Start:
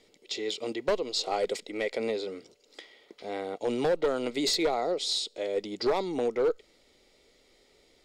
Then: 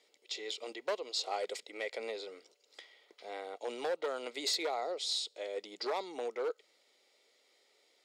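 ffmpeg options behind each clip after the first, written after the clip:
-af "highpass=550,volume=0.562"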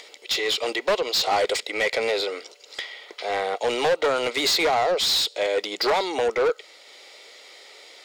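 -filter_complex "[0:a]asplit=2[s0][s1];[s1]highpass=f=720:p=1,volume=11.2,asoftclip=type=tanh:threshold=0.0891[s2];[s0][s2]amix=inputs=2:normalize=0,lowpass=f=5000:p=1,volume=0.501,acompressor=mode=upward:threshold=0.00355:ratio=2.5,volume=2.51"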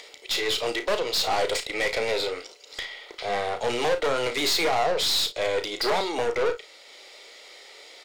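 -filter_complex "[0:a]aeval=exprs='(tanh(10*val(0)+0.35)-tanh(0.35))/10':c=same,asplit=2[s0][s1];[s1]aecho=0:1:34|55:0.355|0.168[s2];[s0][s2]amix=inputs=2:normalize=0"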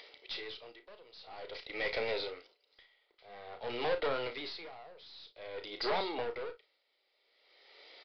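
-af "aresample=11025,aresample=44100,aeval=exprs='val(0)*pow(10,-22*(0.5-0.5*cos(2*PI*0.5*n/s))/20)':c=same,volume=0.398"

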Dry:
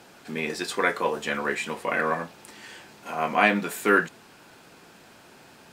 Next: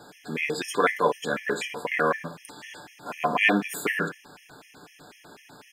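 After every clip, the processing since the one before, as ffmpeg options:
-filter_complex "[0:a]aecho=1:1:6.8:0.38,asplit=2[s0][s1];[s1]adelay=60,lowpass=f=4000:p=1,volume=0.251,asplit=2[s2][s3];[s3]adelay=60,lowpass=f=4000:p=1,volume=0.41,asplit=2[s4][s5];[s5]adelay=60,lowpass=f=4000:p=1,volume=0.41,asplit=2[s6][s7];[s7]adelay=60,lowpass=f=4000:p=1,volume=0.41[s8];[s0][s2][s4][s6][s8]amix=inputs=5:normalize=0,afftfilt=real='re*gt(sin(2*PI*4*pts/sr)*(1-2*mod(floor(b*sr/1024/1700),2)),0)':imag='im*gt(sin(2*PI*4*pts/sr)*(1-2*mod(floor(b*sr/1024/1700),2)),0)':win_size=1024:overlap=0.75,volume=1.41"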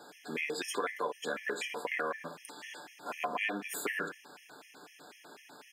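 -af "highpass=270,acompressor=threshold=0.0398:ratio=5,volume=0.668"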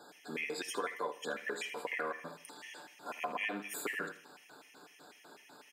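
-af "aecho=1:1:79|158|237|316:0.158|0.0666|0.028|0.0117,volume=0.708"

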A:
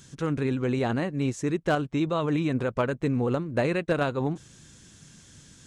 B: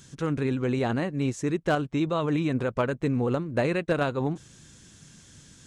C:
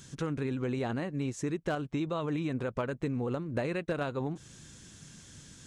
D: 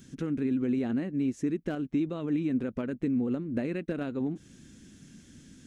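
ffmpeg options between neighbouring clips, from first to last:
-af anull
-af "acompressor=threshold=0.0282:ratio=3"
-af "equalizer=f=125:t=o:w=1:g=-6,equalizer=f=250:t=o:w=1:g=10,equalizer=f=500:t=o:w=1:g=-3,equalizer=f=1000:t=o:w=1:g=-10,equalizer=f=4000:t=o:w=1:g=-5,equalizer=f=8000:t=o:w=1:g=-7"

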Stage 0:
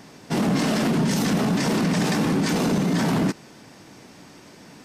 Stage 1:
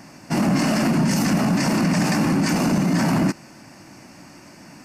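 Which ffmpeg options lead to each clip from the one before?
-af "superequalizer=7b=0.398:13b=0.316,volume=1.33"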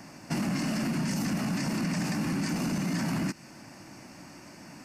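-filter_complex "[0:a]acrossover=split=310|1400[s0][s1][s2];[s0]acompressor=threshold=0.0501:ratio=4[s3];[s1]acompressor=threshold=0.0126:ratio=4[s4];[s2]acompressor=threshold=0.02:ratio=4[s5];[s3][s4][s5]amix=inputs=3:normalize=0,volume=0.668"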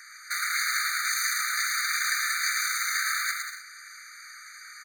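-filter_complex "[0:a]asplit=2[s0][s1];[s1]acrusher=bits=4:mix=0:aa=0.000001,volume=0.422[s2];[s0][s2]amix=inputs=2:normalize=0,aecho=1:1:110|187|240.9|278.6|305:0.631|0.398|0.251|0.158|0.1,afftfilt=real='re*eq(mod(floor(b*sr/1024/1200),2),1)':imag='im*eq(mod(floor(b*sr/1024/1200),2),1)':win_size=1024:overlap=0.75,volume=2.51"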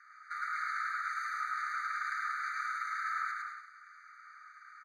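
-filter_complex "[0:a]bandpass=f=1200:t=q:w=5.2:csg=0,asplit=2[s0][s1];[s1]aecho=0:1:103:0.668[s2];[s0][s2]amix=inputs=2:normalize=0"

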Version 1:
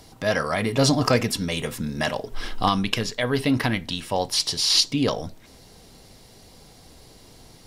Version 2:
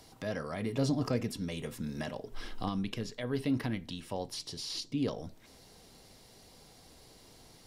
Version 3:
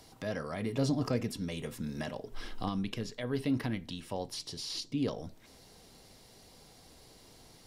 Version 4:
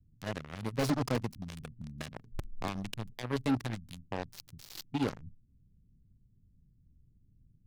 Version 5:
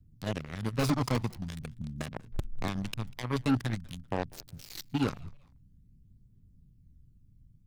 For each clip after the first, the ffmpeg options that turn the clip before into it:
-filter_complex "[0:a]lowshelf=f=200:g=-4.5,acrossover=split=450[s0][s1];[s1]acompressor=threshold=0.00794:ratio=2[s2];[s0][s2]amix=inputs=2:normalize=0,volume=0.473"
-af anull
-filter_complex "[0:a]acrossover=split=180[s0][s1];[s0]aeval=exprs='(mod(33.5*val(0)+1,2)-1)/33.5':c=same[s2];[s1]acrusher=bits=4:mix=0:aa=0.5[s3];[s2][s3]amix=inputs=2:normalize=0"
-filter_complex "[0:a]aphaser=in_gain=1:out_gain=1:delay=1:decay=0.35:speed=0.47:type=triangular,asplit=3[s0][s1][s2];[s1]adelay=195,afreqshift=-140,volume=0.0668[s3];[s2]adelay=390,afreqshift=-280,volume=0.024[s4];[s0][s3][s4]amix=inputs=3:normalize=0,volume=1.26"

